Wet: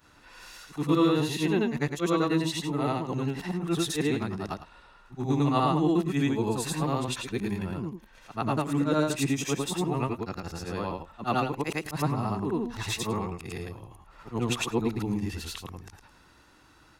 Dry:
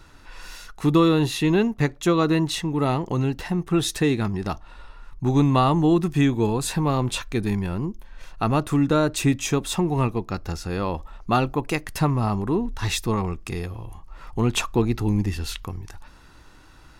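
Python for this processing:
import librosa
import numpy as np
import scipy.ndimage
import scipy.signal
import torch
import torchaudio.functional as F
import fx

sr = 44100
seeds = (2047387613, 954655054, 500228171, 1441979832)

y = fx.frame_reverse(x, sr, frame_ms=223.0)
y = fx.highpass(y, sr, hz=130.0, slope=6)
y = F.gain(torch.from_numpy(y), -1.5).numpy()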